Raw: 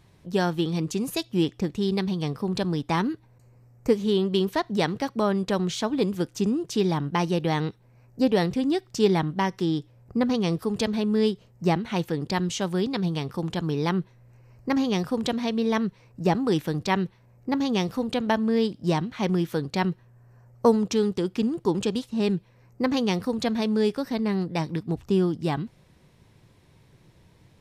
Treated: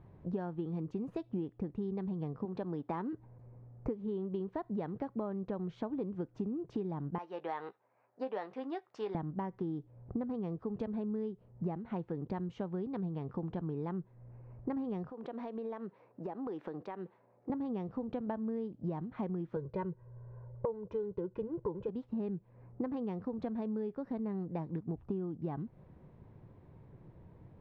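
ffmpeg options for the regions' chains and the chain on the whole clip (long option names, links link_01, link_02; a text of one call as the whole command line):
ffmpeg -i in.wav -filter_complex "[0:a]asettb=1/sr,asplit=3[link_01][link_02][link_03];[link_01]atrim=end=2.454[link_04];[link_02]atrim=start=2.45:end=3.13,asetpts=PTS-STARTPTS,afade=type=in:duration=0.004:curve=qsin,afade=type=out:start_time=0.676:duration=0.004:curve=qsin,highpass=frequency=340:poles=1,acrusher=bits=8:mode=log:mix=0:aa=0.000001[link_05];[link_03]atrim=start=3.126[link_06];[link_04][link_05]acrossfade=duration=0.004:curve1=hsin:curve2=qsin[link_07];[link_07][link_06]acrossfade=duration=0.004:curve1=qsin:curve2=hsin,asettb=1/sr,asplit=3[link_08][link_09][link_10];[link_08]atrim=end=7.184[link_11];[link_09]atrim=start=7.18:end=9.15,asetpts=PTS-STARTPTS,afade=type=in:duration=0.004:curve=qsin,afade=type=out:start_time=1.966:duration=0.004:curve=qsin,highpass=850,asplit=2[link_12][link_13];[link_13]adelay=15,volume=-11dB[link_14];[link_12][link_14]amix=inputs=2:normalize=0,atrim=end_sample=86877[link_15];[link_10]atrim=start=9.146[link_16];[link_11][link_15]acrossfade=duration=0.004:curve1=hsin:curve2=qsin[link_17];[link_17][link_16]acrossfade=duration=0.004:curve1=qsin:curve2=hsin,asettb=1/sr,asplit=3[link_18][link_19][link_20];[link_18]atrim=end=15.104[link_21];[link_19]atrim=start=15.1:end=17.5,asetpts=PTS-STARTPTS,afade=type=in:duration=0.004:curve=qsin,afade=type=out:start_time=2.396:duration=0.004:curve=qsin,highpass=390,acompressor=threshold=-37dB:ratio=6:attack=3.2:release=140:knee=1:detection=peak[link_22];[link_20]atrim=start=17.496[link_23];[link_21][link_22]acrossfade=duration=0.004:curve1=hsin:curve2=qsin[link_24];[link_24][link_23]acrossfade=duration=0.004:curve1=qsin:curve2=hsin,asettb=1/sr,asplit=3[link_25][link_26][link_27];[link_25]atrim=end=19.564[link_28];[link_26]atrim=start=19.56:end=21.89,asetpts=PTS-STARTPTS,afade=type=in:duration=0.004:curve=qsin,afade=type=out:start_time=2.326:duration=0.004:curve=qsin,lowpass=frequency=2100:poles=1,aecho=1:1:2:0.96,atrim=end_sample=102753[link_29];[link_27]atrim=start=21.886[link_30];[link_28][link_29]acrossfade=duration=0.004:curve1=hsin:curve2=qsin[link_31];[link_31][link_30]acrossfade=duration=0.004:curve1=qsin:curve2=hsin,lowpass=1000,acompressor=threshold=-35dB:ratio=10,volume=1dB" out.wav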